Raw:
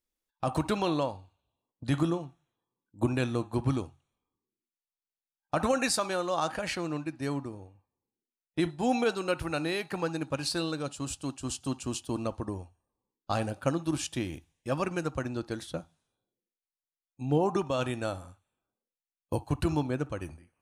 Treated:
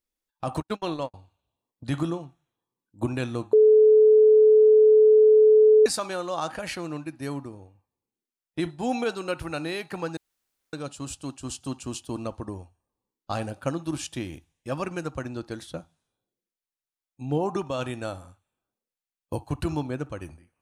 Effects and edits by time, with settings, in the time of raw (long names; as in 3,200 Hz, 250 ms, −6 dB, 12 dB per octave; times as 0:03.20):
0:00.60–0:01.14: noise gate −29 dBFS, range −50 dB
0:03.53–0:05.86: beep over 431 Hz −12 dBFS
0:06.59–0:07.47: parametric band 11,000 Hz +10 dB 0.21 octaves
0:10.17–0:10.73: fill with room tone